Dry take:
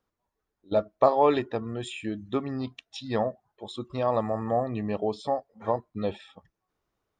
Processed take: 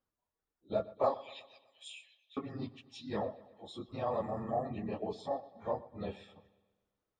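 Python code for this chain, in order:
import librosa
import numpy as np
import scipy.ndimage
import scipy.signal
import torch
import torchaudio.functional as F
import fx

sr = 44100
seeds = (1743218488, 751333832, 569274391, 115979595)

y = fx.phase_scramble(x, sr, seeds[0], window_ms=50)
y = fx.steep_highpass(y, sr, hz=2600.0, slope=36, at=(1.14, 2.37))
y = fx.echo_bbd(y, sr, ms=123, stages=4096, feedback_pct=52, wet_db=-18.5)
y = y * 10.0 ** (-9.0 / 20.0)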